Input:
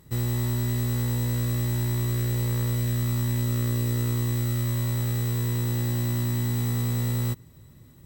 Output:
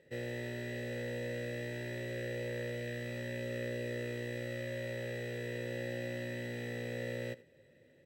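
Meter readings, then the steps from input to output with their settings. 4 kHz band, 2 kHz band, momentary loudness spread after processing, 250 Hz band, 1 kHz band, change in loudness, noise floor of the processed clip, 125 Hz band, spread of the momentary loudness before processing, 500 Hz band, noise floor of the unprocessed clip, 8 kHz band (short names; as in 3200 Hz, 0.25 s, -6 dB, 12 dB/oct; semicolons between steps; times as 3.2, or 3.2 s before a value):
-10.0 dB, -0.5 dB, 2 LU, -12.5 dB, -14.5 dB, -13.5 dB, -64 dBFS, -19.5 dB, 1 LU, 0.0 dB, -51 dBFS, -20.0 dB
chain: vowel filter e; echo 82 ms -19.5 dB; gain +9 dB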